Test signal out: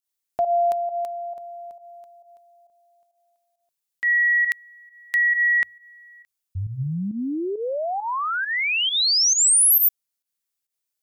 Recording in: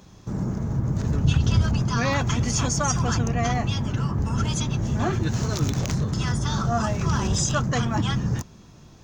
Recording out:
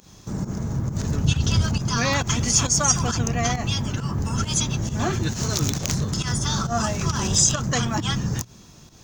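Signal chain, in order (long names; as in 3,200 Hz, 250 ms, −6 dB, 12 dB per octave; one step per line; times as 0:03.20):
mains-hum notches 60/120 Hz
fake sidechain pumping 135 BPM, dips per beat 1, −12 dB, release 109 ms
high-shelf EQ 3,700 Hz +11.5 dB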